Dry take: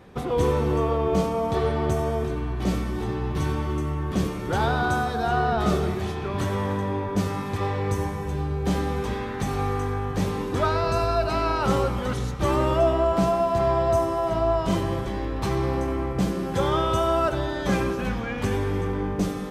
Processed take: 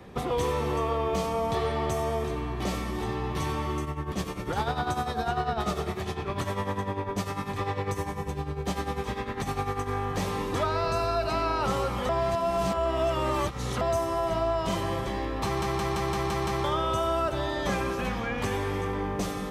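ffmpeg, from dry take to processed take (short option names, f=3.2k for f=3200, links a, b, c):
-filter_complex "[0:a]asplit=3[a][b][c];[a]afade=t=out:st=3.84:d=0.02[d];[b]tremolo=f=10:d=0.7,afade=t=in:st=3.84:d=0.02,afade=t=out:st=9.88:d=0.02[e];[c]afade=t=in:st=9.88:d=0.02[f];[d][e][f]amix=inputs=3:normalize=0,asplit=10[g][h][i][j][k][l][m][n][o][p];[g]atrim=end=12.092[q];[h]atrim=start=12.088:end=13.812,asetpts=PTS-STARTPTS,areverse[r];[i]atrim=start=13.808:end=15.622[s];[j]atrim=start=15.448:end=15.622[t];[k]atrim=start=15.448:end=15.622[u];[l]atrim=start=15.448:end=15.622[v];[m]atrim=start=15.448:end=15.622[w];[n]atrim=start=15.448:end=15.622[x];[o]atrim=start=15.448:end=15.622[y];[p]atrim=start=16.638[z];[q][r]acrossfade=d=0.004:c1=hsin:c2=hsin[aa];[aa][s]acrossfade=d=0.004:c1=hsin:c2=hsin[ab];[ab][t]acrossfade=d=0.004:c1=hsin:c2=hsin[ac];[ac][u]acrossfade=d=0.004:c1=hsin:c2=hsin[ad];[ad][v]acrossfade=d=0.004:c1=hsin:c2=hsin[ae];[ae][w]acrossfade=d=0.004:c1=hsin:c2=hsin[af];[af][x]acrossfade=d=0.004:c1=hsin:c2=hsin[ag];[ag][y]acrossfade=d=0.004:c1=hsin:c2=hsin[ah];[ah][z]acrossfade=d=0.004:c1=hsin:c2=hsin,bandreject=f=1.5k:w=14,acrossover=split=120|550|1400[ai][aj][ak][al];[ai]acompressor=threshold=-38dB:ratio=4[am];[aj]acompressor=threshold=-36dB:ratio=4[an];[ak]acompressor=threshold=-32dB:ratio=4[ao];[al]acompressor=threshold=-37dB:ratio=4[ap];[am][an][ao][ap]amix=inputs=4:normalize=0,volume=2dB"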